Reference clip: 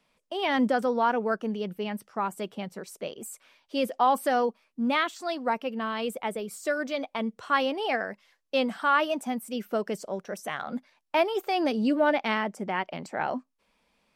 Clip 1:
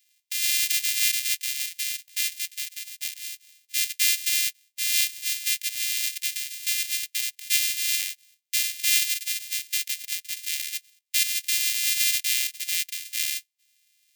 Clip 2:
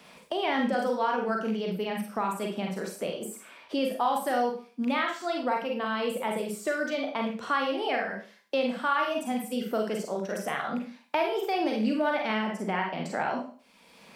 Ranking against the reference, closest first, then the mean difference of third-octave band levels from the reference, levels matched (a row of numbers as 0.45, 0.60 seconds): 2, 1; 6.0, 25.0 decibels